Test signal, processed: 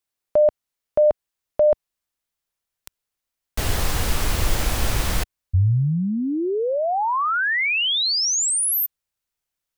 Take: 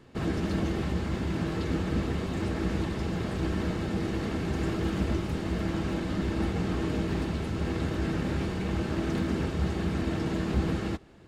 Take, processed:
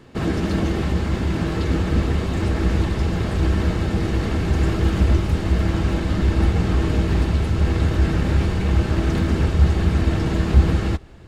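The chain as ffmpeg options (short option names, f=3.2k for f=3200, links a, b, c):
-af "asubboost=boost=3:cutoff=110,volume=7.5dB"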